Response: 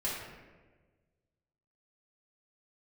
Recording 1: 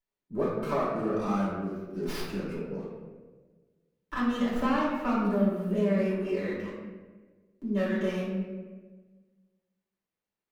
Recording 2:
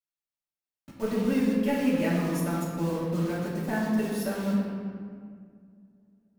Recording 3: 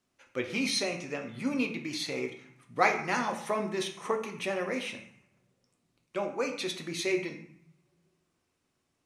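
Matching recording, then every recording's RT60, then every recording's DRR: 1; 1.4, 2.0, 0.65 seconds; −8.0, −9.5, 3.5 decibels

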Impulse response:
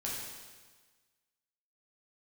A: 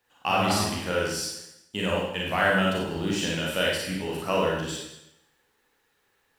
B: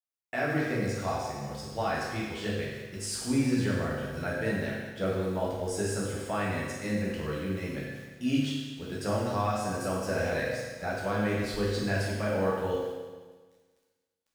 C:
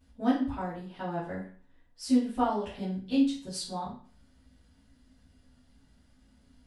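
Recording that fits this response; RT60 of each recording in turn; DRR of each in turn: B; 0.85, 1.4, 0.45 seconds; −4.0, −5.5, −11.5 decibels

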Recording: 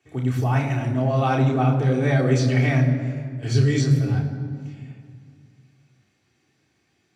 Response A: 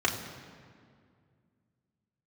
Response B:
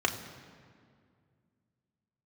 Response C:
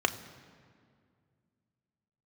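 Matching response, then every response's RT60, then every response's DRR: A; 2.1, 2.1, 2.1 seconds; −2.5, 2.0, 7.0 decibels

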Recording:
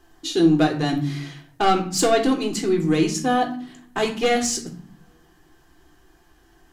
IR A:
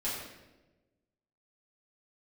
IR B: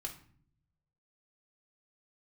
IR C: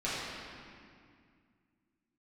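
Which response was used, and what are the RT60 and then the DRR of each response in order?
B; 1.1, 0.50, 2.2 seconds; −9.5, 1.0, −10.5 decibels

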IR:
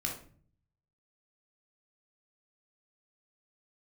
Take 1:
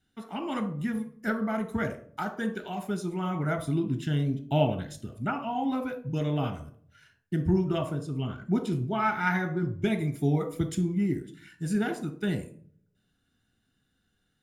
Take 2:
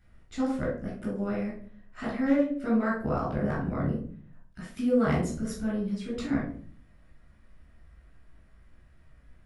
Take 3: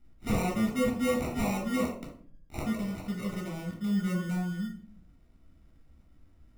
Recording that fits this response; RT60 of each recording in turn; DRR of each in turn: 3; 0.45, 0.45, 0.45 seconds; 7.5, −6.5, −1.0 decibels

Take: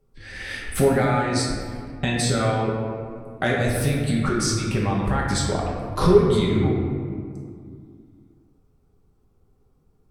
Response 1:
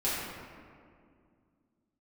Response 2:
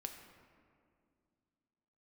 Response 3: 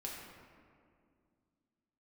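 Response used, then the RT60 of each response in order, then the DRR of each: 3; 2.2, 2.3, 2.2 seconds; −11.0, 4.0, −3.5 decibels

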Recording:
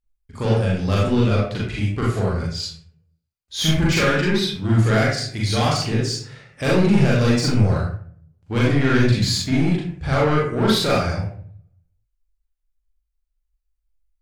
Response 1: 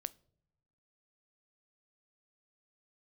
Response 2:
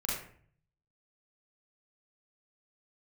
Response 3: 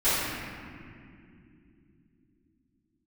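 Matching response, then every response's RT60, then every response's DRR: 2; non-exponential decay, 0.55 s, non-exponential decay; 16.5, −6.0, −17.5 decibels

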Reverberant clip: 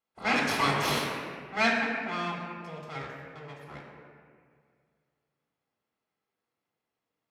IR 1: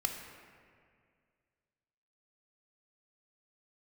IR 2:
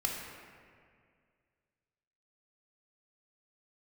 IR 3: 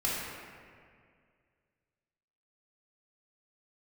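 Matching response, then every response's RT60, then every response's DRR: 2; 2.1, 2.1, 2.1 seconds; 3.0, −1.0, −7.0 decibels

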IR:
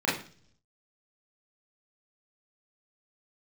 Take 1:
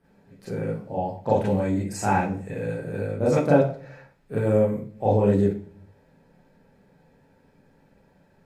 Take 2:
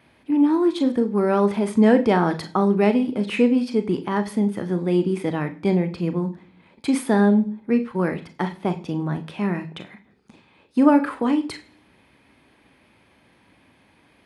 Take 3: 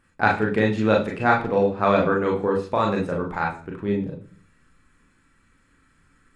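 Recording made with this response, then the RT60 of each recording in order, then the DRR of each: 1; 0.45, 0.45, 0.45 seconds; −8.0, 8.5, −1.5 decibels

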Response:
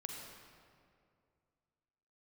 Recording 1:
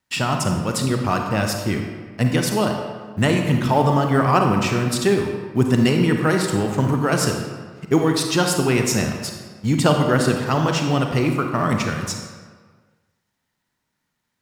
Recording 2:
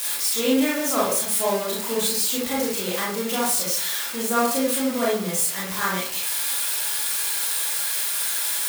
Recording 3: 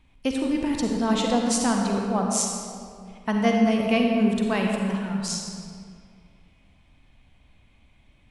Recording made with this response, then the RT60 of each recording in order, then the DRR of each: 3; 1.6, 0.60, 2.3 seconds; 3.0, −6.5, 0.5 decibels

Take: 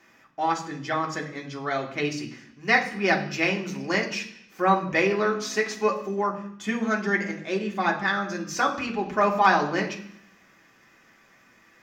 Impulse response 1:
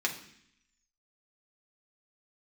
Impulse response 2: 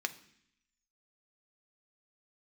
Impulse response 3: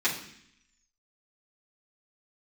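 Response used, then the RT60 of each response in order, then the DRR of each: 1; 0.65, 0.65, 0.65 seconds; −0.5, 7.5, −9.5 decibels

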